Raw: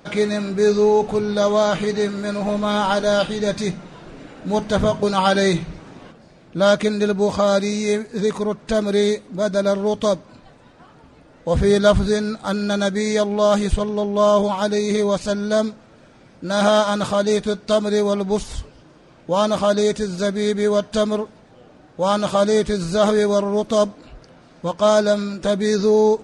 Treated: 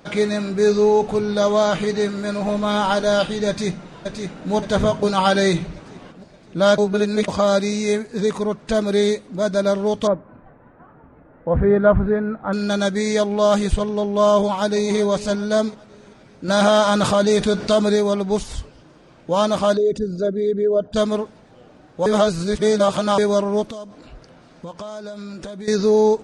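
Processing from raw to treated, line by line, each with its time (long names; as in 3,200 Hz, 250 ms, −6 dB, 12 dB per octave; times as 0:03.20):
0:03.48–0:04.52: delay throw 570 ms, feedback 50%, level −6 dB
0:06.78–0:07.28: reverse
0:10.07–0:12.53: low-pass filter 1,800 Hz 24 dB per octave
0:14.37–0:14.96: delay throw 390 ms, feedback 45%, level −15 dB
0:16.48–0:17.96: envelope flattener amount 50%
0:19.77–0:20.96: spectral envelope exaggerated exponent 2
0:22.06–0:23.18: reverse
0:23.69–0:25.68: downward compressor 12 to 1, threshold −29 dBFS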